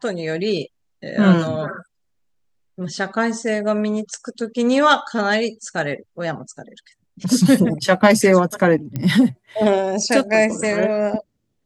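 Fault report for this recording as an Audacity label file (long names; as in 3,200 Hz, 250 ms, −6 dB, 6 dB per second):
8.960000	8.960000	click −13 dBFS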